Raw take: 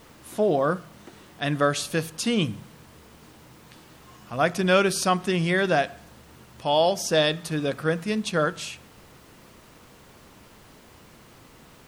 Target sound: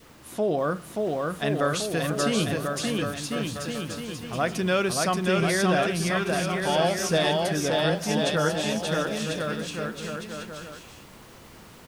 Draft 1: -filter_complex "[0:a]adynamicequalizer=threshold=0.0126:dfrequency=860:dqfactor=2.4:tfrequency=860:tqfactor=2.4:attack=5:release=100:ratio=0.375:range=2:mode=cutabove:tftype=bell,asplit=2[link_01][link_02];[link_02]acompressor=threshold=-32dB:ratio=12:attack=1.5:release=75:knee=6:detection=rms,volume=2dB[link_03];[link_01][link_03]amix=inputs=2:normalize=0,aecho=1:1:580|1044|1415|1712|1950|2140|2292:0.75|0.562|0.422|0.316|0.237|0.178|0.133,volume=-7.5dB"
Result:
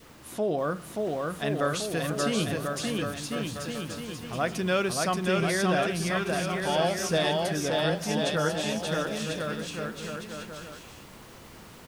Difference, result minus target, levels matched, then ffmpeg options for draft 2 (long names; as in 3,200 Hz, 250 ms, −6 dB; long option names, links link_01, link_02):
downward compressor: peak gain reduction +9.5 dB
-filter_complex "[0:a]adynamicequalizer=threshold=0.0126:dfrequency=860:dqfactor=2.4:tfrequency=860:tqfactor=2.4:attack=5:release=100:ratio=0.375:range=2:mode=cutabove:tftype=bell,asplit=2[link_01][link_02];[link_02]acompressor=threshold=-21.5dB:ratio=12:attack=1.5:release=75:knee=6:detection=rms,volume=2dB[link_03];[link_01][link_03]amix=inputs=2:normalize=0,aecho=1:1:580|1044|1415|1712|1950|2140|2292:0.75|0.562|0.422|0.316|0.237|0.178|0.133,volume=-7.5dB"